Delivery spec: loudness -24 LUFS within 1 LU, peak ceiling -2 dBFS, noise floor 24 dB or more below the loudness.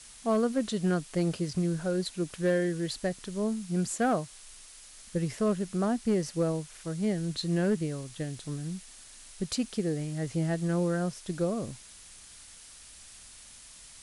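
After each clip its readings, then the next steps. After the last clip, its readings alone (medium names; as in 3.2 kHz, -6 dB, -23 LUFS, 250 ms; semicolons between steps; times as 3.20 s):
clipped samples 0.3%; clipping level -19.5 dBFS; noise floor -51 dBFS; noise floor target -55 dBFS; loudness -31.0 LUFS; peak level -19.5 dBFS; loudness target -24.0 LUFS
-> clip repair -19.5 dBFS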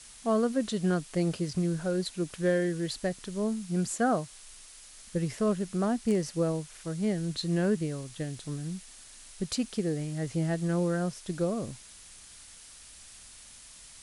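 clipped samples 0.0%; noise floor -51 dBFS; noise floor target -55 dBFS
-> noise print and reduce 6 dB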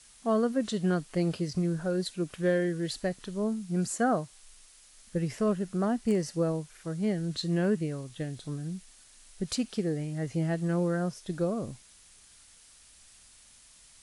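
noise floor -57 dBFS; loudness -31.0 LUFS; peak level -15.0 dBFS; loudness target -24.0 LUFS
-> trim +7 dB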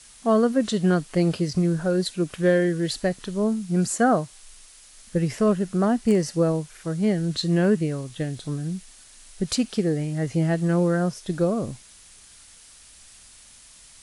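loudness -24.0 LUFS; peak level -8.0 dBFS; noise floor -50 dBFS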